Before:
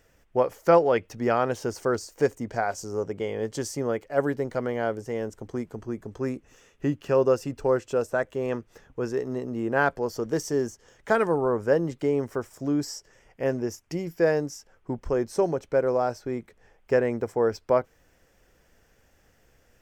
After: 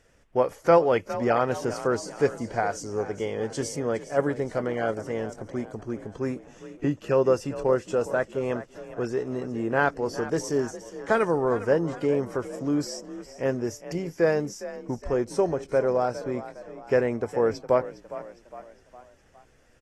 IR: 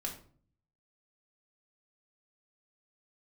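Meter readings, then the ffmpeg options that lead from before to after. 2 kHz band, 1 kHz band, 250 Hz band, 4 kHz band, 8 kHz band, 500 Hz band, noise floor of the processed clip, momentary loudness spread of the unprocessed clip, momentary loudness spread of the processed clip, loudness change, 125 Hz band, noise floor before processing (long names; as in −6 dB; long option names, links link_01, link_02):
+0.5 dB, +0.5 dB, 0.0 dB, +0.5 dB, +0.5 dB, 0.0 dB, −58 dBFS, 11 LU, 12 LU, 0.0 dB, +0.5 dB, −63 dBFS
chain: -filter_complex "[0:a]asplit=5[link_01][link_02][link_03][link_04][link_05];[link_02]adelay=410,afreqshift=38,volume=-14.5dB[link_06];[link_03]adelay=820,afreqshift=76,volume=-20.9dB[link_07];[link_04]adelay=1230,afreqshift=114,volume=-27.3dB[link_08];[link_05]adelay=1640,afreqshift=152,volume=-33.6dB[link_09];[link_01][link_06][link_07][link_08][link_09]amix=inputs=5:normalize=0" -ar 32000 -c:a aac -b:a 32k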